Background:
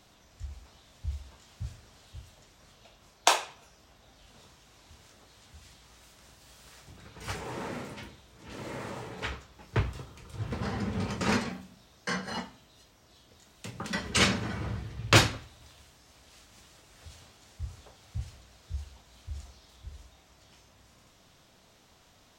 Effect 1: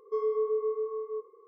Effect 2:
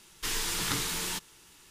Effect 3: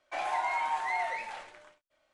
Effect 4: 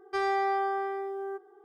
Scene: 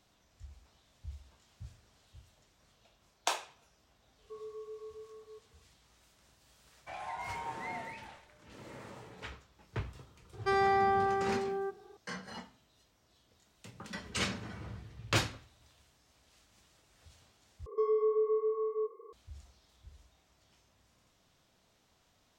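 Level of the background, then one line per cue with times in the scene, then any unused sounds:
background -10 dB
4.18 s: add 1 -17 dB
6.75 s: add 3 -10 dB
10.33 s: add 4
17.66 s: replace with 1 -0.5 dB + three bands compressed up and down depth 40%
not used: 2

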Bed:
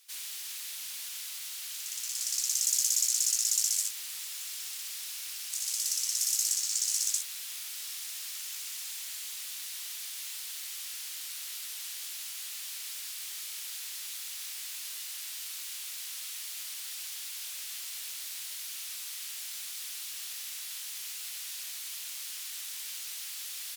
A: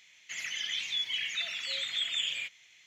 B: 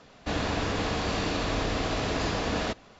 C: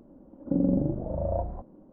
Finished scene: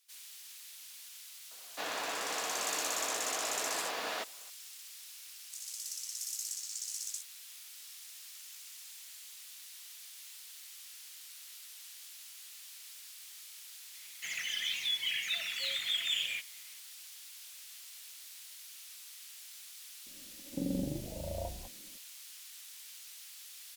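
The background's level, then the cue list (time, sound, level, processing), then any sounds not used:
bed -10.5 dB
1.51 s: add B -4.5 dB + high-pass 660 Hz
13.93 s: add A -1 dB
20.06 s: add C -10.5 dB

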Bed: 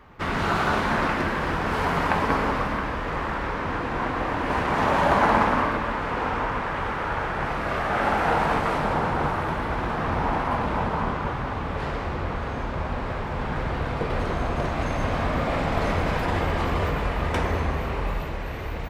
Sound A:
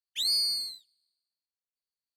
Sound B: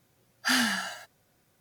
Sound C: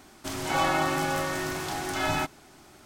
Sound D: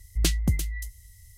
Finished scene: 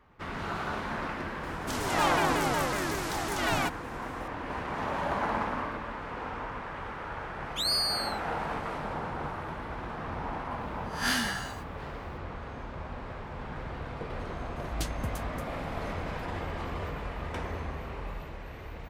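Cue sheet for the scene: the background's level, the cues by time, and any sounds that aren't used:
bed -11 dB
1.43 s: add C -1 dB + vibrato with a chosen wave saw down 5.4 Hz, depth 250 cents
7.40 s: add A -1.5 dB
10.58 s: add B -5 dB + reverse spectral sustain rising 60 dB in 0.35 s
14.56 s: add D -11.5 dB

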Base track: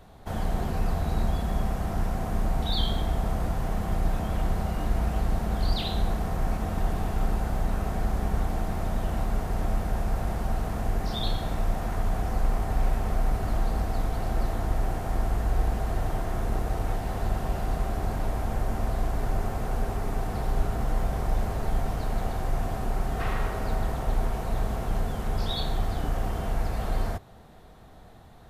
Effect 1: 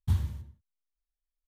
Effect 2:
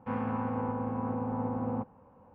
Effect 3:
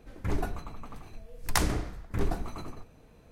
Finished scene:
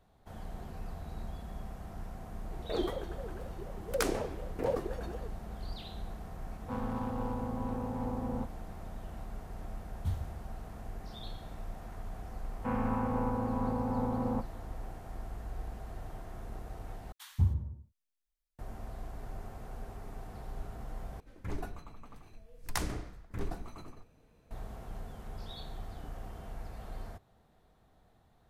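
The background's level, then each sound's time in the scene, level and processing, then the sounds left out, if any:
base track -15.5 dB
2.45 s: add 3 -3.5 dB + ring modulator with a swept carrier 440 Hz, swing 25%, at 4 Hz
6.62 s: add 2 -3.5 dB + local Wiener filter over 15 samples
9.97 s: add 1 -8 dB
12.58 s: add 2
17.12 s: replace with 1 -0.5 dB + bands offset in time highs, lows 190 ms, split 1.1 kHz
21.20 s: replace with 3 -8 dB

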